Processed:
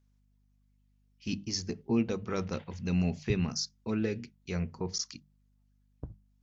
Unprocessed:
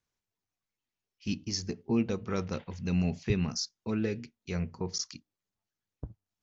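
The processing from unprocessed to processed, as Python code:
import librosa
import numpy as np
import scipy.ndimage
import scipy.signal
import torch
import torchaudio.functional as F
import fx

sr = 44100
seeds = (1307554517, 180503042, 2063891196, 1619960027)

y = fx.hum_notches(x, sr, base_hz=50, count=4)
y = fx.add_hum(y, sr, base_hz=50, snr_db=34)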